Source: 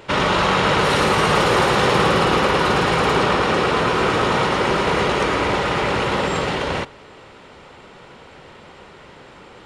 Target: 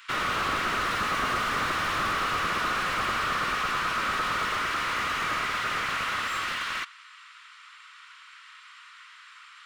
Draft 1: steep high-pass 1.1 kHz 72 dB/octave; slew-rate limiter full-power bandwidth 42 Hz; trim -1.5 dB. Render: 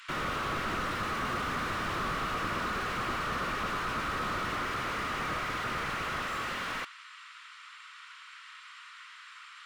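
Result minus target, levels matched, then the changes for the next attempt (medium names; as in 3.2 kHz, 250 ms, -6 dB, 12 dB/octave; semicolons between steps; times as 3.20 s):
slew-rate limiter: distortion +8 dB
change: slew-rate limiter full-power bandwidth 96.5 Hz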